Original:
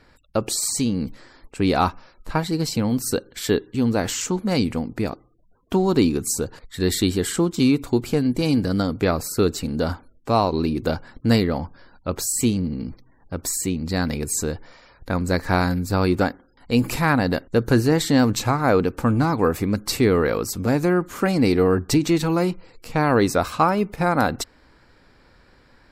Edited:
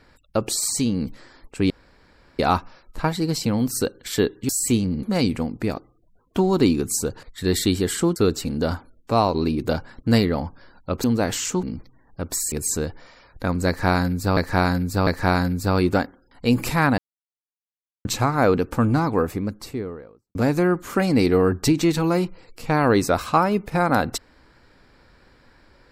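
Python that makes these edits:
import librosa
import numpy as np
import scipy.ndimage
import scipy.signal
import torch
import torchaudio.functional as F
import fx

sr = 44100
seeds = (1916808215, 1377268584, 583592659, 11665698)

y = fx.studio_fade_out(x, sr, start_s=19.05, length_s=1.56)
y = fx.edit(y, sr, fx.insert_room_tone(at_s=1.7, length_s=0.69),
    fx.swap(start_s=3.8, length_s=0.59, other_s=12.22, other_length_s=0.54),
    fx.cut(start_s=7.52, length_s=1.82),
    fx.cut(start_s=13.65, length_s=0.53),
    fx.repeat(start_s=15.33, length_s=0.7, count=3),
    fx.silence(start_s=17.24, length_s=1.07), tone=tone)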